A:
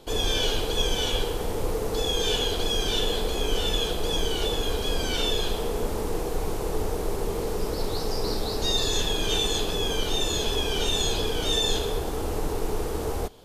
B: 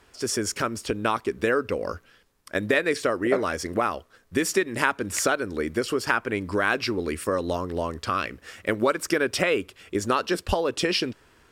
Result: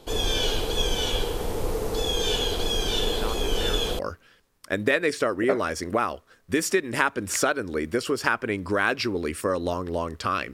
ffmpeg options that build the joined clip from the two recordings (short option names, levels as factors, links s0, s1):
-filter_complex "[1:a]asplit=2[s0][s1];[0:a]apad=whole_dur=10.53,atrim=end=10.53,atrim=end=3.992[s2];[s1]atrim=start=1.818:end=8.36[s3];[s0]atrim=start=0.86:end=1.82,asetpts=PTS-STARTPTS,volume=0.282,afade=t=in:d=0.004:c=hsin,afade=t=out:st=0.956:d=0.004:c=hsin,adelay=3030[s4];[s2][s3]acrossfade=d=0.004:c1=hsin:c2=hsin[s5];[s5][s4]amix=inputs=2:normalize=0"